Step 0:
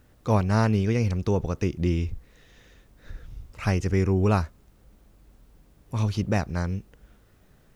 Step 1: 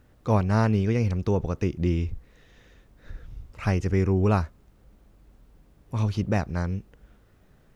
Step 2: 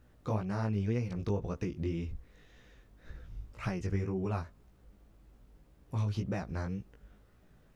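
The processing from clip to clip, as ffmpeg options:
ffmpeg -i in.wav -af "highshelf=frequency=3700:gain=-6" out.wav
ffmpeg -i in.wav -af "acompressor=threshold=-25dB:ratio=6,flanger=delay=15.5:depth=4.5:speed=1.9,volume=-1.5dB" out.wav

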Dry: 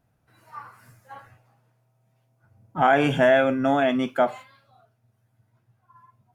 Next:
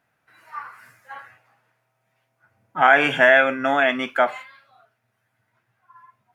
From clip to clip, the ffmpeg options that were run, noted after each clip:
ffmpeg -i in.wav -af "highpass=frequency=380:poles=1,equalizer=frequency=1900:width=0.86:gain=11" out.wav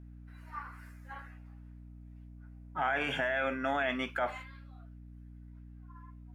ffmpeg -i in.wav -af "alimiter=limit=-14dB:level=0:latency=1:release=27,aeval=exprs='val(0)+0.01*(sin(2*PI*60*n/s)+sin(2*PI*2*60*n/s)/2+sin(2*PI*3*60*n/s)/3+sin(2*PI*4*60*n/s)/4+sin(2*PI*5*60*n/s)/5)':channel_layout=same,volume=-8.5dB" out.wav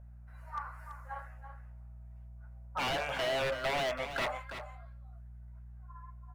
ffmpeg -i in.wav -af "firequalizer=gain_entry='entry(100,0);entry(330,-24);entry(540,8);entry(1900,-3);entry(3200,-8);entry(7200,-1)':delay=0.05:min_phase=1,aeval=exprs='0.0422*(abs(mod(val(0)/0.0422+3,4)-2)-1)':channel_layout=same,aecho=1:1:332:0.316" out.wav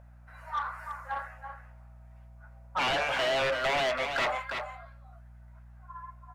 ffmpeg -i in.wav -filter_complex "[0:a]asplit=2[link_01][link_02];[link_02]highpass=frequency=720:poles=1,volume=13dB,asoftclip=type=tanh:threshold=-25dB[link_03];[link_01][link_03]amix=inputs=2:normalize=0,lowpass=frequency=5000:poles=1,volume=-6dB,volume=3dB" out.wav

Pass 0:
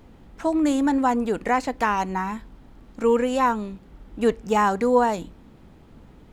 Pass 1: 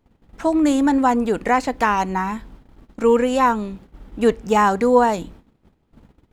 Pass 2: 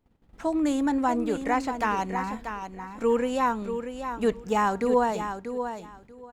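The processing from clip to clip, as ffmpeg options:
ffmpeg -i in.wav -af "agate=range=-20dB:threshold=-45dB:ratio=16:detection=peak,volume=4dB" out.wav
ffmpeg -i in.wav -af "aecho=1:1:637|1274|1911:0.376|0.0677|0.0122,volume=-8dB" out.wav

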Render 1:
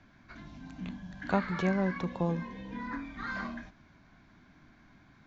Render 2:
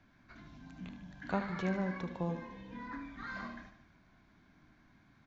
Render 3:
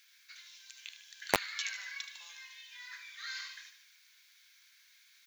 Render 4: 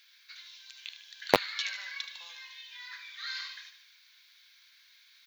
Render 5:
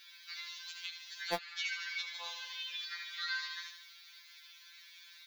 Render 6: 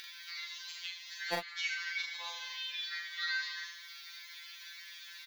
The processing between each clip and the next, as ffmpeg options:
ffmpeg -i in.wav -af "aecho=1:1:75|150|225|300|375|450:0.316|0.168|0.0888|0.0471|0.025|0.0132,volume=-6dB" out.wav
ffmpeg -i in.wav -filter_complex "[0:a]acrossover=split=2000[link_01][link_02];[link_01]acrusher=bits=3:mix=0:aa=0.000001[link_03];[link_02]crystalizer=i=4.5:c=0[link_04];[link_03][link_04]amix=inputs=2:normalize=0,volume=7dB" out.wav
ffmpeg -i in.wav -af "equalizer=frequency=125:width_type=o:width=1:gain=6,equalizer=frequency=250:width_type=o:width=1:gain=5,equalizer=frequency=500:width_type=o:width=1:gain=9,equalizer=frequency=1000:width_type=o:width=1:gain=3,equalizer=frequency=4000:width_type=o:width=1:gain=8,equalizer=frequency=8000:width_type=o:width=1:gain=-9" out.wav
ffmpeg -i in.wav -af "acompressor=threshold=-43dB:ratio=2.5,afftfilt=real='re*2.83*eq(mod(b,8),0)':imag='im*2.83*eq(mod(b,8),0)':win_size=2048:overlap=0.75,volume=7dB" out.wav
ffmpeg -i in.wav -filter_complex "[0:a]equalizer=frequency=1900:width_type=o:width=0.27:gain=5.5,acompressor=mode=upward:threshold=-42dB:ratio=2.5,asplit=2[link_01][link_02];[link_02]adelay=40,volume=-3dB[link_03];[link_01][link_03]amix=inputs=2:normalize=0,volume=-1dB" out.wav

